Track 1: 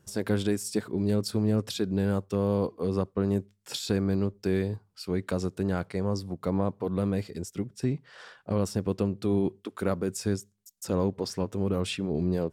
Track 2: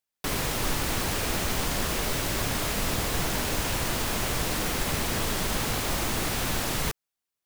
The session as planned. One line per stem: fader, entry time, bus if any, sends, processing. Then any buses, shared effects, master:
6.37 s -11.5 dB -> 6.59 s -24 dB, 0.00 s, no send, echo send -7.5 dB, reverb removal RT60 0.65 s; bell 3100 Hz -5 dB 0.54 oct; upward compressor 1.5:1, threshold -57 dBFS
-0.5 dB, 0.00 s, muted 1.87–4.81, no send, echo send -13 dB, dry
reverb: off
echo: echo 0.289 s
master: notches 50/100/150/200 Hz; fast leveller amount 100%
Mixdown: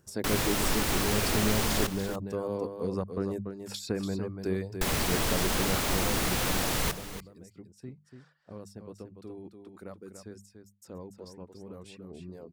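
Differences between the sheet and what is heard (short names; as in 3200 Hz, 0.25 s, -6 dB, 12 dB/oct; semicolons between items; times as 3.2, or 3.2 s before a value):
stem 1 -11.5 dB -> -3.0 dB; master: missing fast leveller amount 100%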